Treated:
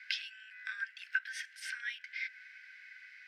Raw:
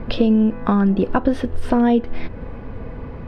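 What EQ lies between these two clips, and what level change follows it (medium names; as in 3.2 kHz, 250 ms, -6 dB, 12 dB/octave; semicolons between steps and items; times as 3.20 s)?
dynamic bell 4.3 kHz, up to -6 dB, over -48 dBFS, Q 1.8; rippled Chebyshev high-pass 1.5 kHz, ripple 9 dB; +4.5 dB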